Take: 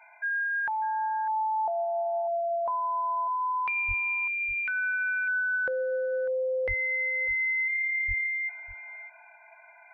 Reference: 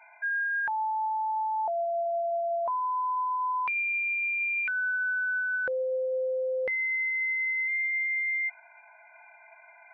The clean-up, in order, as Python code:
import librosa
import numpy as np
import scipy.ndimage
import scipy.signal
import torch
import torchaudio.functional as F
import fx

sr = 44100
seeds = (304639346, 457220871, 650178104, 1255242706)

y = fx.highpass(x, sr, hz=140.0, slope=24, at=(3.87, 3.99), fade=0.02)
y = fx.highpass(y, sr, hz=140.0, slope=24, at=(6.67, 6.79), fade=0.02)
y = fx.highpass(y, sr, hz=140.0, slope=24, at=(8.07, 8.19), fade=0.02)
y = fx.fix_echo_inverse(y, sr, delay_ms=598, level_db=-14.5)